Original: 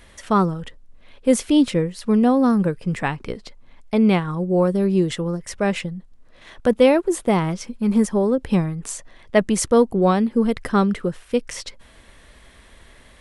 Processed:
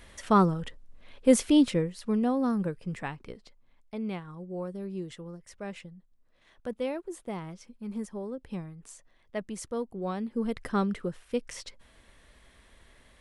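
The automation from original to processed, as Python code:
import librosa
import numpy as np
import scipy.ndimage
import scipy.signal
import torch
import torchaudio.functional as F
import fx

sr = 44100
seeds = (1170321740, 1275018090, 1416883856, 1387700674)

y = fx.gain(x, sr, db=fx.line((1.41, -3.5), (2.2, -10.5), (2.75, -10.5), (3.97, -18.0), (9.95, -18.0), (10.58, -9.5)))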